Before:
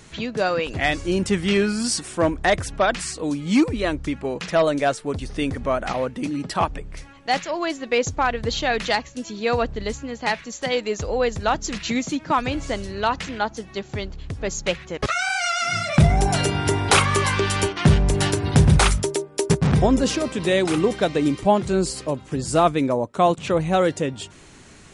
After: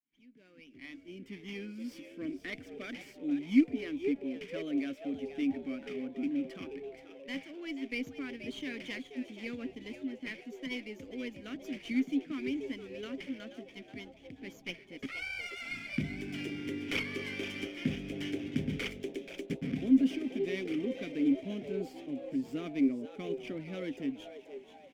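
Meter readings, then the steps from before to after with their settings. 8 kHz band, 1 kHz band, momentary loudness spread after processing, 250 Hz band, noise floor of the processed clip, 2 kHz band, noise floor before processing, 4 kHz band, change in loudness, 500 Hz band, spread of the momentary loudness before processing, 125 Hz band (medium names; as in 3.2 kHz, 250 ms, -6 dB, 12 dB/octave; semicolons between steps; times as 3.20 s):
-28.5 dB, -31.0 dB, 13 LU, -8.5 dB, -57 dBFS, -15.5 dB, -46 dBFS, -17.5 dB, -14.0 dB, -18.5 dB, 10 LU, -23.0 dB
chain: fade-in on the opening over 3.00 s; vowel filter i; peaking EQ 4 kHz -9.5 dB 0.27 oct; frequency-shifting echo 481 ms, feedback 41%, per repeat +130 Hz, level -11 dB; sliding maximum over 3 samples; trim -2.5 dB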